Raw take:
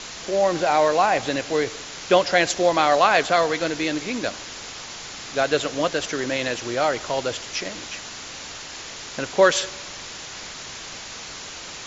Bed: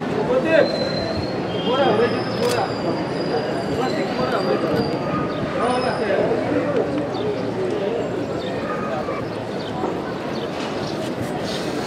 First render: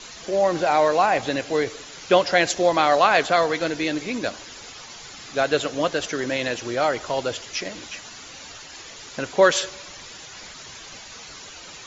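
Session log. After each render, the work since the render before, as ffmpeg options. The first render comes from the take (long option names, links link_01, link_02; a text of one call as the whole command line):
ffmpeg -i in.wav -af "afftdn=noise_reduction=9:noise_floor=-37" out.wav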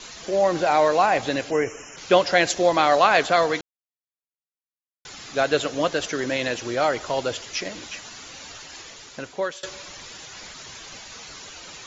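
ffmpeg -i in.wav -filter_complex "[0:a]asplit=3[link_01][link_02][link_03];[link_01]afade=type=out:start_time=1.5:duration=0.02[link_04];[link_02]asuperstop=centerf=4000:order=20:qfactor=1.9,afade=type=in:start_time=1.5:duration=0.02,afade=type=out:start_time=1.96:duration=0.02[link_05];[link_03]afade=type=in:start_time=1.96:duration=0.02[link_06];[link_04][link_05][link_06]amix=inputs=3:normalize=0,asplit=4[link_07][link_08][link_09][link_10];[link_07]atrim=end=3.61,asetpts=PTS-STARTPTS,afade=type=out:start_time=3.606:duration=0.004:curve=hsin[link_11];[link_08]atrim=start=3.61:end=5.05,asetpts=PTS-STARTPTS,volume=0[link_12];[link_09]atrim=start=5.05:end=9.63,asetpts=PTS-STARTPTS,afade=type=in:duration=0.004:curve=hsin,afade=type=out:start_time=3.71:duration=0.87:silence=0.0707946[link_13];[link_10]atrim=start=9.63,asetpts=PTS-STARTPTS,afade=type=in:duration=0.004:curve=hsin:silence=0.0707946[link_14];[link_11][link_12][link_13][link_14]concat=n=4:v=0:a=1" out.wav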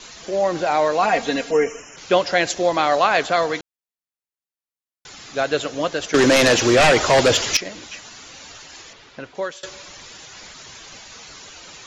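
ffmpeg -i in.wav -filter_complex "[0:a]asettb=1/sr,asplit=3[link_01][link_02][link_03];[link_01]atrim=end=1.024[link_04];[link_02]atrim=start=1.02:end=1.8,asetpts=PTS-STARTPTS,afade=type=in:duration=0.004:curve=qsin,afade=type=out:start_time=0.776:duration=0.004:curve=qsin,aecho=1:1:4.3:0.94,atrim=end_sample=34398[link_05];[link_03]atrim=start=1.796[link_06];[link_04][link_05]acrossfade=duration=0.004:curve1=hsin:curve2=qsin[link_07];[link_07][link_06]acrossfade=duration=0.004:curve1=qsin:curve2=hsin,asettb=1/sr,asplit=3[link_08][link_09][link_10];[link_08]atrim=end=6.144[link_11];[link_09]atrim=start=6.14:end=7.57,asetpts=PTS-STARTPTS,afade=type=in:duration=0.004:curve=qsin,afade=type=out:start_time=1.426:duration=0.004:curve=qsin,aeval=exprs='0.355*sin(PI/2*3.55*val(0)/0.355)':channel_layout=same[link_12];[link_10]atrim=start=7.566[link_13];[link_11][link_12]acrossfade=duration=0.004:curve1=hsin:curve2=qsin[link_14];[link_14][link_13]acrossfade=duration=0.004:curve1=qsin:curve2=hsin,asettb=1/sr,asplit=3[link_15][link_16][link_17];[link_15]atrim=end=8.934[link_18];[link_16]atrim=start=8.93:end=9.35,asetpts=PTS-STARTPTS,afade=type=in:duration=0.004:curve=qsin,afade=type=out:start_time=0.416:duration=0.004:curve=qsin,lowpass=3600[link_19];[link_17]atrim=start=9.346[link_20];[link_18][link_19]acrossfade=duration=0.004:curve1=hsin:curve2=qsin[link_21];[link_21][link_20]acrossfade=duration=0.004:curve1=qsin:curve2=hsin" out.wav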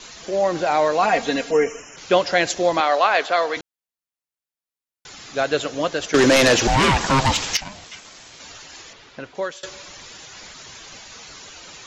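ffmpeg -i in.wav -filter_complex "[0:a]asettb=1/sr,asplit=3[link_01][link_02][link_03];[link_01]atrim=end=2.804[link_04];[link_02]atrim=start=2.8:end=3.57,asetpts=PTS-STARTPTS,afade=type=in:duration=0.004:curve=qsin,afade=type=out:start_time=0.766:duration=0.004:curve=qsin,highpass=400,lowpass=5400[link_05];[link_03]atrim=start=3.566[link_06];[link_04][link_05]acrossfade=duration=0.004:curve1=hsin:curve2=qsin[link_07];[link_07][link_06]acrossfade=duration=0.004:curve1=qsin:curve2=hsin,asettb=1/sr,asplit=3[link_08][link_09][link_10];[link_08]atrim=end=6.674[link_11];[link_09]atrim=start=6.67:end=8.4,asetpts=PTS-STARTPTS,afade=type=in:duration=0.004:curve=qsin,afade=type=out:start_time=1.726:duration=0.004:curve=qsin,aeval=exprs='val(0)*sin(2*PI*400*n/s)':channel_layout=same[link_12];[link_10]atrim=start=8.396[link_13];[link_11][link_12]acrossfade=duration=0.004:curve1=hsin:curve2=qsin[link_14];[link_14][link_13]acrossfade=duration=0.004:curve1=qsin:curve2=hsin" out.wav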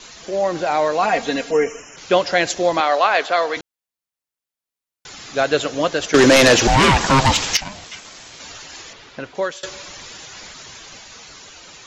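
ffmpeg -i in.wav -af "dynaudnorm=framelen=240:gausssize=13:maxgain=4dB" out.wav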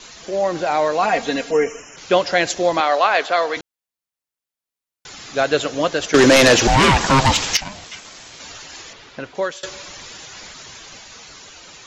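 ffmpeg -i in.wav -af anull out.wav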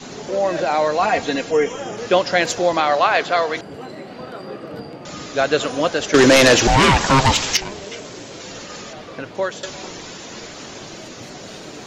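ffmpeg -i in.wav -i bed.wav -filter_complex "[1:a]volume=-12.5dB[link_01];[0:a][link_01]amix=inputs=2:normalize=0" out.wav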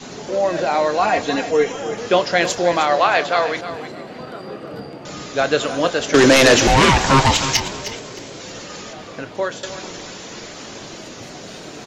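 ffmpeg -i in.wav -filter_complex "[0:a]asplit=2[link_01][link_02];[link_02]adelay=29,volume=-13.5dB[link_03];[link_01][link_03]amix=inputs=2:normalize=0,asplit=2[link_04][link_05];[link_05]aecho=0:1:310|620|930:0.251|0.0703|0.0197[link_06];[link_04][link_06]amix=inputs=2:normalize=0" out.wav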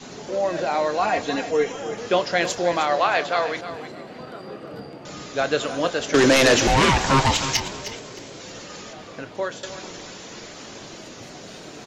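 ffmpeg -i in.wav -af "volume=-4.5dB" out.wav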